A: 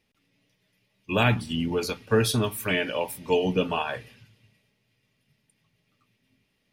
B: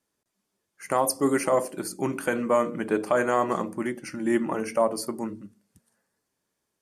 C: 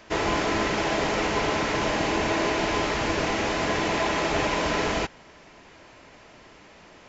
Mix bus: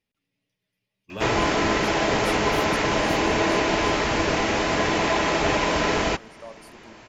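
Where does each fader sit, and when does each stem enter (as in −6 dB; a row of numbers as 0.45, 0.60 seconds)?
−11.0, −19.0, +3.0 decibels; 0.00, 1.65, 1.10 seconds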